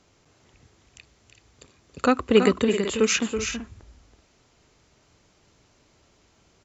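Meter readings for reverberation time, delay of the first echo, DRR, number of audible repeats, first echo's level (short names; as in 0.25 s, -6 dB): none, 0.327 s, none, 2, -7.5 dB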